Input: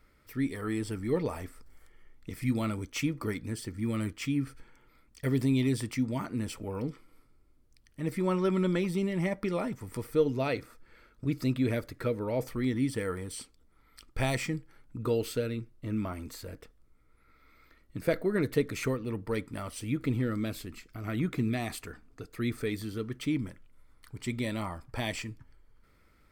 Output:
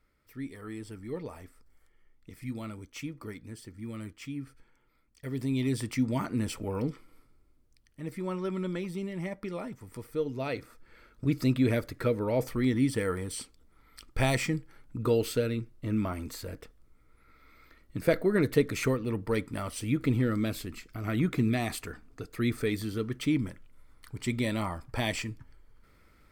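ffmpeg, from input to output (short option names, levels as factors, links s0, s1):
-af "volume=3.76,afade=t=in:st=5.28:d=0.87:silence=0.281838,afade=t=out:st=6.84:d=1.24:silence=0.375837,afade=t=in:st=10.28:d=0.96:silence=0.375837"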